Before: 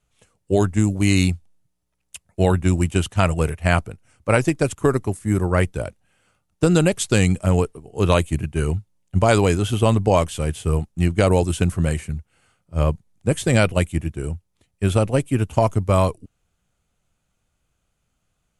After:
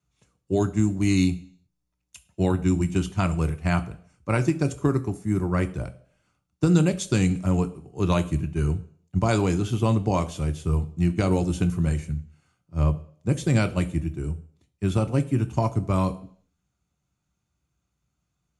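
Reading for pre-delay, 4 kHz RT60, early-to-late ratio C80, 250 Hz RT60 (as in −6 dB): 3 ms, 0.65 s, 20.5 dB, 0.55 s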